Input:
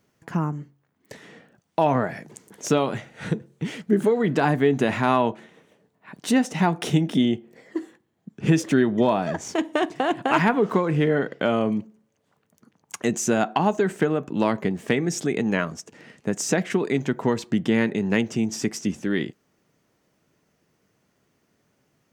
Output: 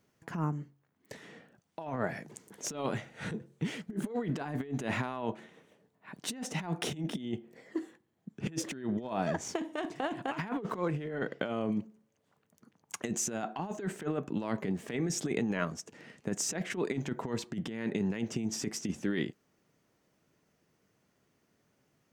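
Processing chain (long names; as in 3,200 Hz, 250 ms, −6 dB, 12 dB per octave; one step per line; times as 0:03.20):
compressor whose output falls as the input rises −24 dBFS, ratio −0.5
level −8.5 dB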